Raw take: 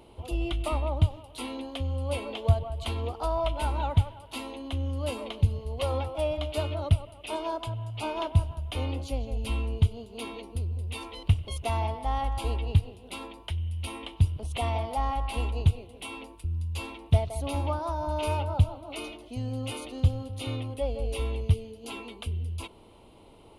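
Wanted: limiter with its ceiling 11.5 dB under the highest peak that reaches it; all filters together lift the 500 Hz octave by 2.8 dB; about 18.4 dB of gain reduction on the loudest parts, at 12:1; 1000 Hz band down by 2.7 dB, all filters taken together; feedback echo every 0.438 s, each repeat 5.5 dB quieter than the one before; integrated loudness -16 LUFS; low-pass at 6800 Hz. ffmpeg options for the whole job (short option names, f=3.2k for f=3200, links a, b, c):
-af "lowpass=6.8k,equalizer=f=500:t=o:g=5.5,equalizer=f=1k:t=o:g=-5.5,acompressor=threshold=-34dB:ratio=12,alimiter=level_in=8.5dB:limit=-24dB:level=0:latency=1,volume=-8.5dB,aecho=1:1:438|876|1314|1752|2190|2628|3066:0.531|0.281|0.149|0.079|0.0419|0.0222|0.0118,volume=24.5dB"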